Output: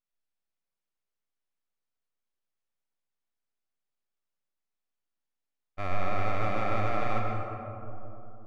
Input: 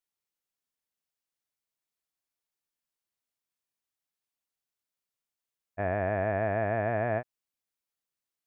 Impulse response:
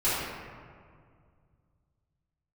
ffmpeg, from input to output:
-filter_complex "[0:a]aeval=exprs='abs(val(0))':c=same,aemphasis=mode=reproduction:type=50kf,asplit=2[a][b];[1:a]atrim=start_sample=2205,asetrate=24255,aresample=44100,adelay=102[c];[b][c]afir=irnorm=-1:irlink=0,volume=-17.5dB[d];[a][d]amix=inputs=2:normalize=0"

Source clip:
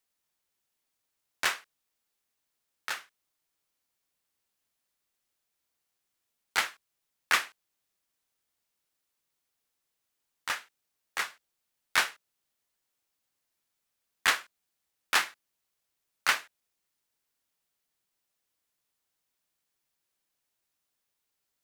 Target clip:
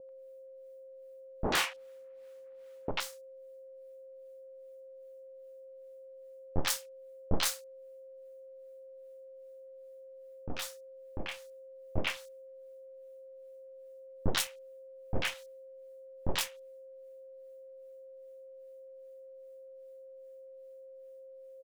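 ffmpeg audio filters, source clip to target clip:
-filter_complex "[0:a]acrossover=split=1500[a][b];[a]aeval=exprs='val(0)*(1-1/2+1/2*cos(2*PI*2.5*n/s))':c=same[c];[b]aeval=exprs='val(0)*(1-1/2-1/2*cos(2*PI*2.5*n/s))':c=same[d];[c][d]amix=inputs=2:normalize=0,aeval=exprs='abs(val(0))':c=same,asettb=1/sr,asplit=3[e][f][g];[e]atrim=end=1.444[h];[f]atrim=start=1.44:end=2.91,asetpts=PTS-STARTPTS,afade=t=in:d=0.004:c=qsin,afade=t=out:st=1.466:d=0.004:c=qsin,asplit=2[i][j];[j]highpass=f=720:p=1,volume=31dB,asoftclip=type=tanh:threshold=-15.5dB[k];[i][k]amix=inputs=2:normalize=0,lowpass=f=1.3k:p=1,volume=-6dB[l];[g]atrim=start=2.906[m];[h][l]acrossfade=d=0.004:c1=hsin:c2=qsin[n];[n][m]acrossfade=d=0.004:c1=qsin:c2=hsin,aeval=exprs='val(0)+0.00251*sin(2*PI*530*n/s)':c=same,acrossover=split=860|4900[o][p][q];[p]adelay=90[r];[q]adelay=120[s];[o][r][s]amix=inputs=3:normalize=0,volume=5.5dB"

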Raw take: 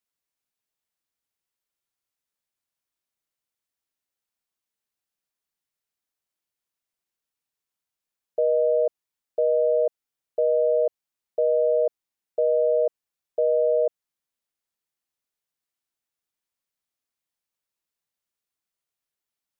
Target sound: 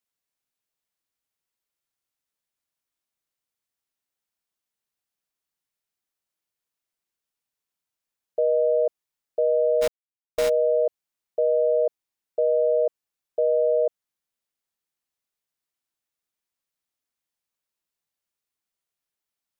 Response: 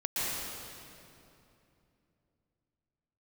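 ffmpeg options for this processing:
-filter_complex "[0:a]asplit=3[a][b][c];[a]afade=t=out:st=9.81:d=0.02[d];[b]acrusher=bits=5:dc=4:mix=0:aa=0.000001,afade=t=in:st=9.81:d=0.02,afade=t=out:st=10.48:d=0.02[e];[c]afade=t=in:st=10.48:d=0.02[f];[d][e][f]amix=inputs=3:normalize=0"

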